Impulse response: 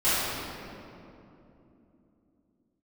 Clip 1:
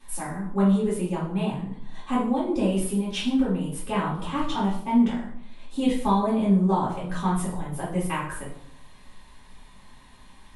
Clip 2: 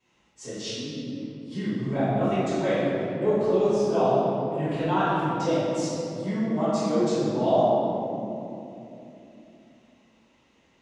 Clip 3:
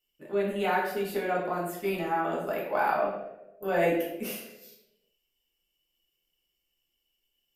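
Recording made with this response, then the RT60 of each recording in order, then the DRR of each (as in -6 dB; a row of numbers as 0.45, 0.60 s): 2; 0.70, 3.0, 1.0 s; -9.0, -16.0, -4.5 dB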